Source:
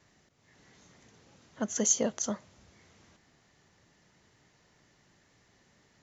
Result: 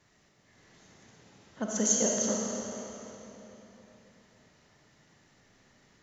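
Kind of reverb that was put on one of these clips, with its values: digital reverb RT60 3.6 s, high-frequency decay 0.85×, pre-delay 5 ms, DRR -2 dB; gain -1.5 dB

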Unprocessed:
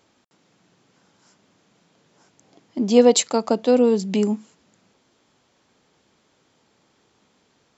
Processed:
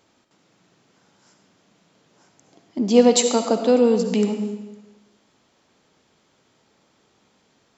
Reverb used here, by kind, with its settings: digital reverb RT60 1.1 s, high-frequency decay 0.9×, pre-delay 30 ms, DRR 6 dB

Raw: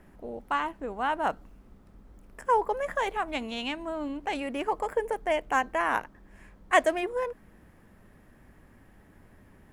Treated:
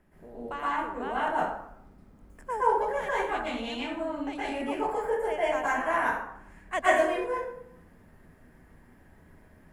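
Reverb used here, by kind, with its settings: plate-style reverb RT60 0.71 s, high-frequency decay 0.6×, pre-delay 0.105 s, DRR -9.5 dB; gain -10 dB

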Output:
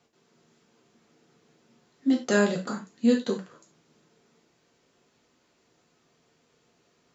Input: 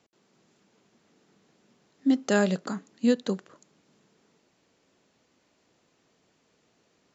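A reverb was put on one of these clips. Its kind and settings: non-linear reverb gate 0.12 s falling, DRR -0.5 dB; gain -2 dB

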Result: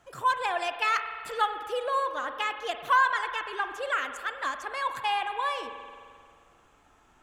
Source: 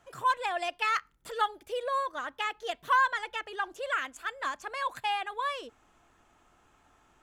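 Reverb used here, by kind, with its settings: spring tank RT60 2 s, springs 44 ms, chirp 80 ms, DRR 7.5 dB; gain +2 dB

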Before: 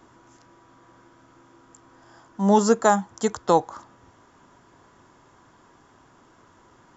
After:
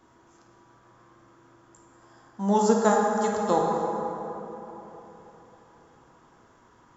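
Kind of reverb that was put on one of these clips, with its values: plate-style reverb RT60 3.8 s, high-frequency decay 0.45×, DRR -1.5 dB; gain -6.5 dB

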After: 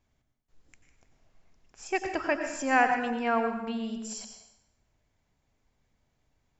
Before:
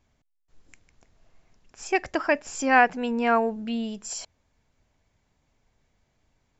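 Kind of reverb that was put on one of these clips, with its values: plate-style reverb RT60 0.87 s, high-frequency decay 0.85×, pre-delay 80 ms, DRR 5.5 dB; gain -5.5 dB

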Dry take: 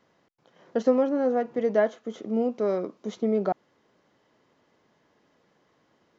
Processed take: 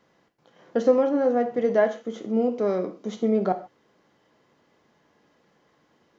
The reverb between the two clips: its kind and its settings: non-linear reverb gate 0.17 s falling, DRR 7 dB; gain +1.5 dB

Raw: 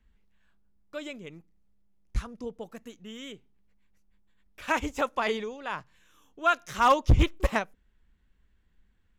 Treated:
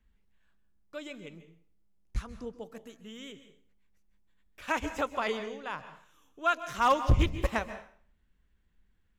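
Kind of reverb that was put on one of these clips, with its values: plate-style reverb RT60 0.51 s, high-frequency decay 0.9×, pre-delay 0.12 s, DRR 11.5 dB; gain -3.5 dB

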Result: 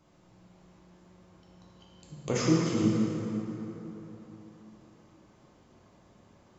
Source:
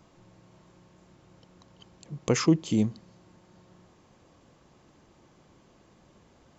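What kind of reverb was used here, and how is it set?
plate-style reverb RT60 3.7 s, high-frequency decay 0.55×, DRR -5.5 dB; gain -7.5 dB

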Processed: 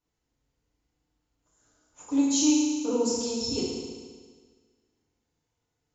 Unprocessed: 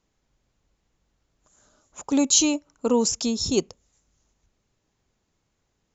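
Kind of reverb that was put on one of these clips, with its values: FDN reverb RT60 1.6 s, low-frequency decay 1×, high-frequency decay 0.95×, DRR -9.5 dB; gain -16 dB

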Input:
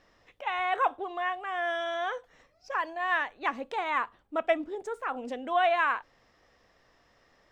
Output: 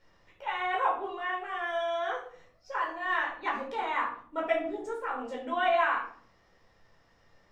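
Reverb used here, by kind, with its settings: shoebox room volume 550 m³, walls furnished, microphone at 4.6 m; gain -8 dB

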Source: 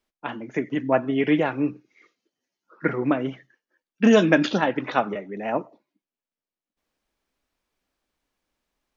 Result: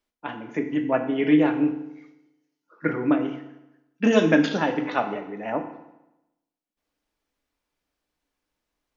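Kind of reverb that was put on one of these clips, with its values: FDN reverb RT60 0.92 s, low-frequency decay 1.05×, high-frequency decay 0.85×, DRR 5 dB; gain -3 dB

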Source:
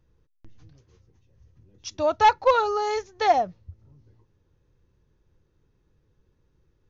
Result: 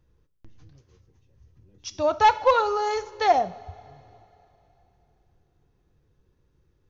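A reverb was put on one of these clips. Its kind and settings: two-slope reverb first 0.57 s, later 3.2 s, from -15 dB, DRR 12.5 dB

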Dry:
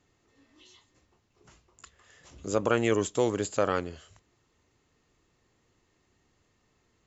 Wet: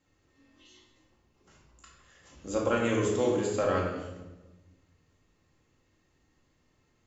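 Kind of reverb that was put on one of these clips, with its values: shoebox room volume 560 m³, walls mixed, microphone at 2.2 m; gain -6.5 dB

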